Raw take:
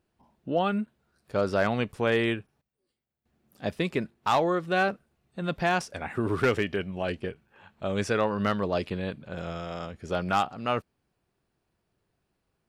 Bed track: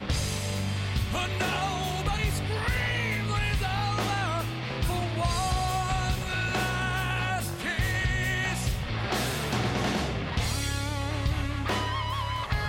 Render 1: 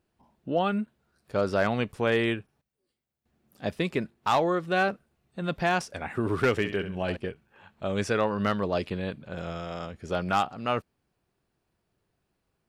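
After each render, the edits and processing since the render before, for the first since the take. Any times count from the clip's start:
0:06.54–0:07.17: flutter between parallel walls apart 11.3 metres, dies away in 0.39 s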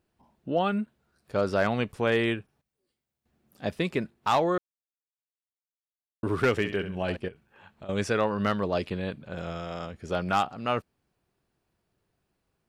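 0:04.58–0:06.23: silence
0:07.28–0:07.89: downward compressor 12 to 1, threshold −39 dBFS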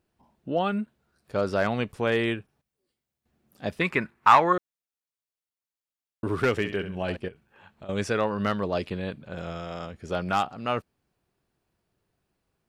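0:03.81–0:04.53: flat-topped bell 1,500 Hz +11 dB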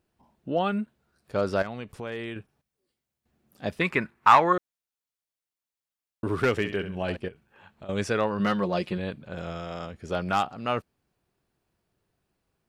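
0:01.62–0:02.36: downward compressor 2.5 to 1, threshold −36 dBFS
0:08.39–0:08.98: comb filter 5.6 ms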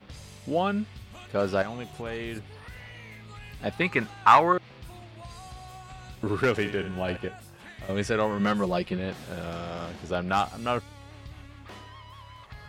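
mix in bed track −16.5 dB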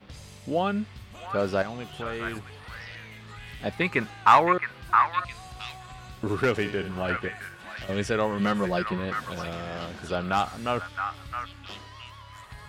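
echo through a band-pass that steps 666 ms, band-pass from 1,500 Hz, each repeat 1.4 octaves, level −1 dB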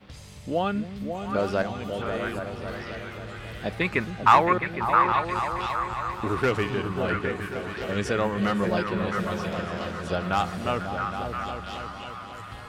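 echo whose low-pass opens from repeat to repeat 271 ms, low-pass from 200 Hz, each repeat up 2 octaves, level −3 dB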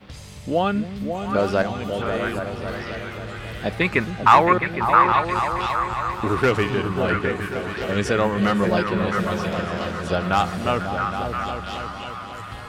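level +5 dB
brickwall limiter −1 dBFS, peak gain reduction 2.5 dB

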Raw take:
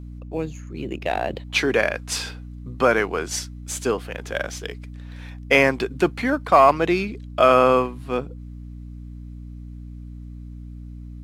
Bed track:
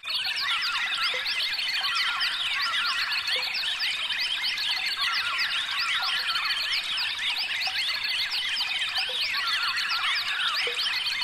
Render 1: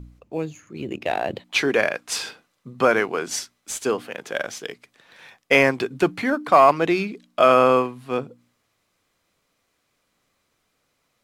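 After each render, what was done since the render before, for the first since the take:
hum removal 60 Hz, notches 5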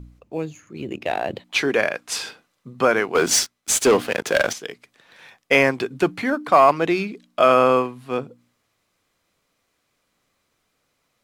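0:03.15–0:04.53: leveller curve on the samples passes 3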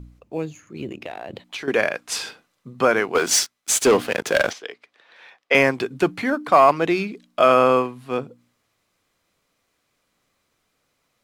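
0:00.87–0:01.68: downward compressor, threshold −29 dBFS
0:03.18–0:03.82: low-shelf EQ 380 Hz −8.5 dB
0:04.50–0:05.55: three-way crossover with the lows and the highs turned down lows −18 dB, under 330 Hz, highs −15 dB, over 5,000 Hz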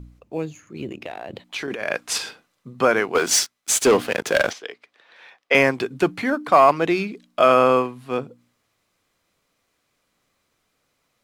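0:01.56–0:02.18: compressor whose output falls as the input rises −26 dBFS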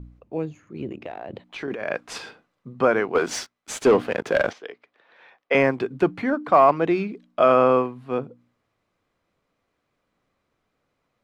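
low-pass filter 1,300 Hz 6 dB per octave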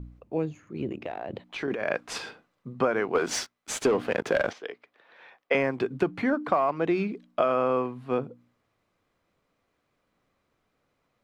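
downward compressor 10 to 1, threshold −20 dBFS, peak gain reduction 10 dB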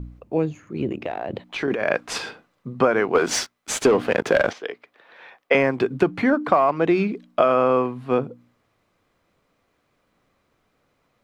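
level +6.5 dB

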